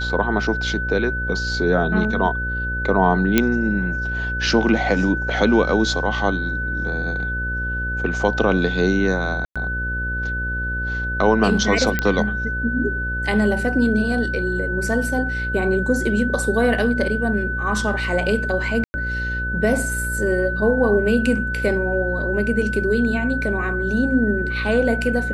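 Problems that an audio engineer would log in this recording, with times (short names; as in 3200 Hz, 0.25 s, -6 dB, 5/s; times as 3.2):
buzz 60 Hz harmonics 10 -27 dBFS
tone 1500 Hz -24 dBFS
3.38 pop -1 dBFS
9.45–9.56 gap 0.106 s
11.99 pop -6 dBFS
18.84–18.94 gap 0.1 s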